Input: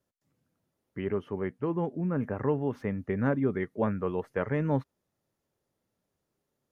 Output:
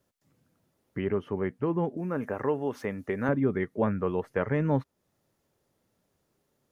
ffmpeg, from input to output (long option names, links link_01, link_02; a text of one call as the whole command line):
ffmpeg -i in.wav -filter_complex "[0:a]asettb=1/sr,asplit=3[link_01][link_02][link_03];[link_01]atrim=end=1.974[link_04];[link_02]atrim=start=1.97:end=3.29,asetpts=PTS-STARTPTS,afade=type=in:duration=0.004:curve=qsin,afade=type=out:start_time=1.316:duration=0.004:curve=qsin,bass=frequency=250:gain=-10,treble=frequency=4000:gain=9[link_05];[link_03]atrim=start=3.286[link_06];[link_04][link_05]acrossfade=duration=0.004:curve1=hsin:curve2=qsin[link_07];[link_07][link_06]acrossfade=duration=0.004:curve1=qsin:curve2=hsin,asplit=2[link_08][link_09];[link_09]acompressor=threshold=-41dB:ratio=6,volume=2dB[link_10];[link_08][link_10]amix=inputs=2:normalize=0" out.wav